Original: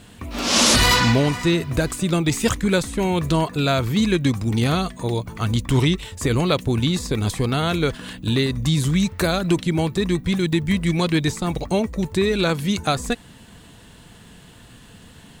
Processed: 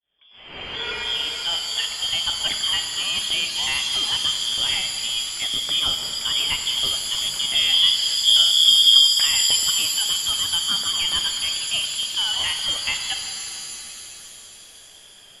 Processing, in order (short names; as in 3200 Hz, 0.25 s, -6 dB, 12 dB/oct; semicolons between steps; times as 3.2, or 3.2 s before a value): opening faded in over 2.04 s; 7.55–9.08 tilt -3.5 dB/oct; inverted band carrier 3400 Hz; shimmer reverb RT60 3.2 s, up +7 st, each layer -2 dB, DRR 5.5 dB; gain -5.5 dB